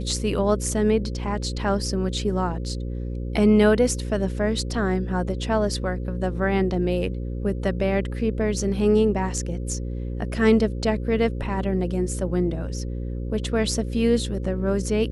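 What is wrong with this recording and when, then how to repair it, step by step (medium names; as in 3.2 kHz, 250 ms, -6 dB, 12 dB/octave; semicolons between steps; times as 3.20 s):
buzz 60 Hz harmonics 9 -29 dBFS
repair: de-hum 60 Hz, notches 9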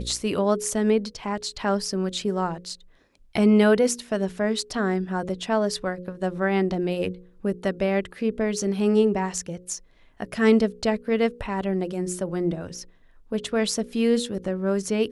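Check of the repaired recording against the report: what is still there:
nothing left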